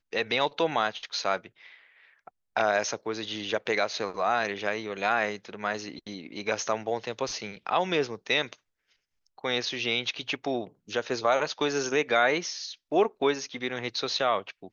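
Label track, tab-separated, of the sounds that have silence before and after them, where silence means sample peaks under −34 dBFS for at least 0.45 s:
2.280000	8.530000	sound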